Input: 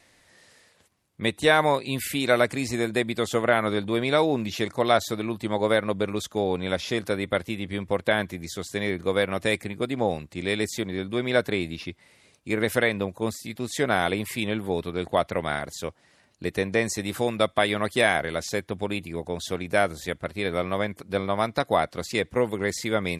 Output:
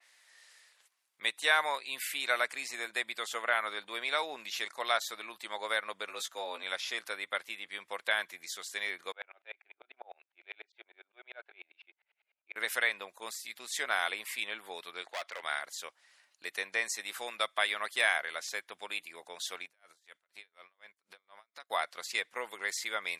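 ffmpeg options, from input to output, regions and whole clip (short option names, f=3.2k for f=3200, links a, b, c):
-filter_complex "[0:a]asettb=1/sr,asplit=3[a][b][c];[a]atrim=end=6.084[d];[b]atrim=start=6.08:end=6.63,asetpts=PTS-STARTPTS,afade=t=in:d=0.004:c=qsin,afade=t=out:st=0.546:d=0.004:c=qsin,afreqshift=75,asplit=2[e][f];[f]adelay=16,volume=-6dB[g];[e][g]amix=inputs=2:normalize=0,atrim=end_sample=24255[h];[c]atrim=start=6.626[i];[d][h]acrossfade=d=0.004:c1=hsin:c2=qsin[j];[j][i]acrossfade=d=0.004:c1=qsin:c2=hsin,asettb=1/sr,asplit=3[k][l][m];[k]atrim=end=9.124[n];[l]atrim=start=9.12:end=12.56,asetpts=PTS-STARTPTS,afade=t=in:d=0.004:c=qsin,afade=t=out:st=3.436:d=0.004:c=qsin,highpass=f=380:w=0.5412,highpass=f=380:w=1.3066,equalizer=f=480:t=q:w=4:g=-6,equalizer=f=710:t=q:w=4:g=3,equalizer=f=1.1k:t=q:w=4:g=-10,equalizer=f=1.9k:t=q:w=4:g=-10,lowpass=f=2.5k:w=0.5412,lowpass=f=2.5k:w=1.3066,aeval=exprs='val(0)*pow(10,-37*if(lt(mod(-10*n/s,1),2*abs(-10)/1000),1-mod(-10*n/s,1)/(2*abs(-10)/1000),(mod(-10*n/s,1)-2*abs(-10)/1000)/(1-2*abs(-10)/1000))/20)':c=same[o];[m]atrim=start=12.556[p];[n][o]acrossfade=d=0.004:c1=hsin:c2=qsin[q];[q][p]acrossfade=d=0.004:c1=qsin:c2=hsin,asettb=1/sr,asplit=3[r][s][t];[r]atrim=end=15.024[u];[s]atrim=start=15.02:end=15.43,asetpts=PTS-STARTPTS,afade=t=in:d=0.004:c=qsin,afade=t=out:st=0.406:d=0.004:c=qsin,highpass=280,lowpass=7.1k,asoftclip=type=hard:threshold=-23.5dB[v];[t]atrim=start=15.426[w];[u][v]acrossfade=d=0.004:c1=hsin:c2=qsin[x];[x][w]acrossfade=d=0.004:c1=qsin:c2=hsin,asettb=1/sr,asplit=3[y][z][aa];[y]atrim=end=19.654[ab];[z]atrim=start=19.65:end=21.7,asetpts=PTS-STARTPTS,afade=t=in:d=0.004:c=qsin,afade=t=out:st=2.046:d=0.004:c=qsin,lowpass=11k,acompressor=threshold=-36dB:ratio=4:attack=3.2:release=140:knee=1:detection=peak,aeval=exprs='val(0)*pow(10,-32*(0.5-0.5*cos(2*PI*4.1*n/s))/20)':c=same[ac];[aa]atrim=start=21.696[ad];[ab][ac]acrossfade=d=0.004:c1=hsin:c2=qsin[ae];[ae][ad]acrossfade=d=0.004:c1=qsin:c2=hsin,highpass=1.2k,adynamicequalizer=threshold=0.01:dfrequency=3000:dqfactor=0.7:tfrequency=3000:tqfactor=0.7:attack=5:release=100:ratio=0.375:range=2:mode=cutabove:tftype=highshelf,volume=-2.5dB"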